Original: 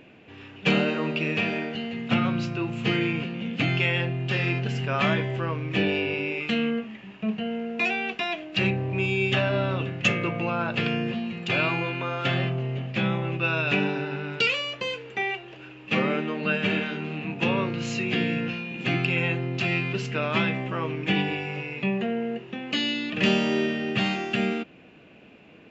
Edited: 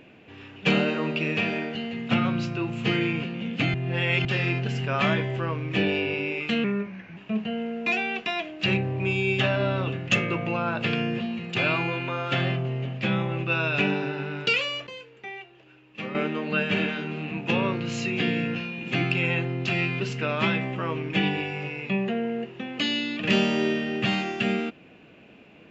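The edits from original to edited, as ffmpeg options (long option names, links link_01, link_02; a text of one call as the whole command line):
ffmpeg -i in.wav -filter_complex "[0:a]asplit=7[link_01][link_02][link_03][link_04][link_05][link_06][link_07];[link_01]atrim=end=3.742[link_08];[link_02]atrim=start=3.738:end=4.252,asetpts=PTS-STARTPTS,areverse[link_09];[link_03]atrim=start=4.248:end=6.644[link_10];[link_04]atrim=start=6.64:end=7.1,asetpts=PTS-STARTPTS,asetrate=38367,aresample=44100,atrim=end_sample=23317,asetpts=PTS-STARTPTS[link_11];[link_05]atrim=start=7.096:end=14.802[link_12];[link_06]atrim=start=14.798:end=16.082,asetpts=PTS-STARTPTS,volume=-10.5dB[link_13];[link_07]atrim=start=16.078[link_14];[link_08][link_09]acrossfade=duration=0.004:curve1=hsin:curve2=hsin[link_15];[link_15][link_10]acrossfade=duration=0.004:curve1=hsin:curve2=hsin[link_16];[link_16][link_11]acrossfade=duration=0.004:curve1=hsin:curve2=hsin[link_17];[link_17][link_12]acrossfade=duration=0.004:curve1=hsin:curve2=hsin[link_18];[link_18][link_13]acrossfade=duration=0.004:curve1=hsin:curve2=hsin[link_19];[link_19][link_14]acrossfade=duration=0.004:curve1=hsin:curve2=hsin" out.wav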